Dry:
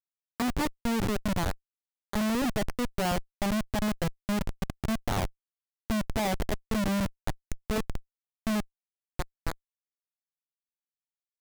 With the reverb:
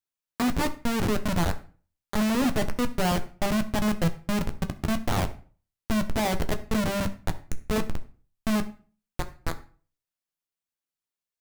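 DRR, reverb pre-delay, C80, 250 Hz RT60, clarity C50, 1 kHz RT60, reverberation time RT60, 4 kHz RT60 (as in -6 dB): 7.5 dB, 11 ms, 20.0 dB, 0.50 s, 15.0 dB, 0.40 s, 0.40 s, 0.35 s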